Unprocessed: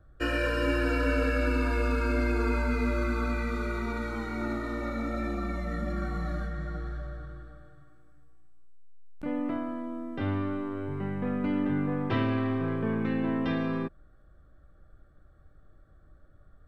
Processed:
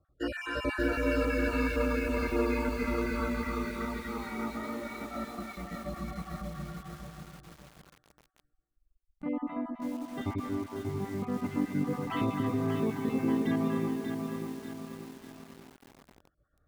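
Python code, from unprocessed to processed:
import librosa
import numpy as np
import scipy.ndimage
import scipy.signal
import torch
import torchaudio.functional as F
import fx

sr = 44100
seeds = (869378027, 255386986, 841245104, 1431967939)

y = fx.spec_dropout(x, sr, seeds[0], share_pct=36)
y = fx.noise_reduce_blind(y, sr, reduce_db=9)
y = fx.highpass(y, sr, hz=83.0, slope=6)
y = y + 10.0 ** (-9.5 / 20.0) * np.pad(y, (int(263 * sr / 1000.0), 0))[:len(y)]
y = fx.echo_crushed(y, sr, ms=587, feedback_pct=55, bits=8, wet_db=-5.0)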